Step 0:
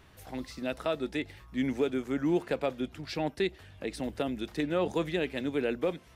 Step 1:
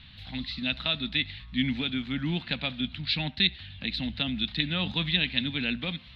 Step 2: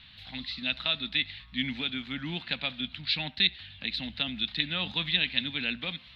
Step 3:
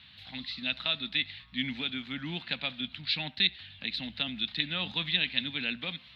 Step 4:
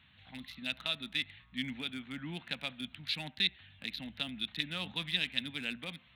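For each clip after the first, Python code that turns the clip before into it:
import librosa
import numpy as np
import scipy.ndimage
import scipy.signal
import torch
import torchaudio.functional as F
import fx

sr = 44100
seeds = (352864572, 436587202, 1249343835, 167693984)

y1 = fx.curve_eq(x, sr, hz=(230.0, 400.0, 790.0, 1200.0, 4000.0, 6000.0, 8600.0), db=(0, -24, -12, -10, 12, -22, -29))
y1 = fx.echo_banded(y1, sr, ms=70, feedback_pct=71, hz=1100.0, wet_db=-21.5)
y1 = y1 * 10.0 ** (7.0 / 20.0)
y2 = fx.low_shelf(y1, sr, hz=390.0, db=-9.0)
y3 = scipy.signal.sosfilt(scipy.signal.butter(2, 79.0, 'highpass', fs=sr, output='sos'), y2)
y3 = y3 * 10.0 ** (-1.5 / 20.0)
y4 = fx.wiener(y3, sr, points=9)
y4 = y4 * 10.0 ** (-4.0 / 20.0)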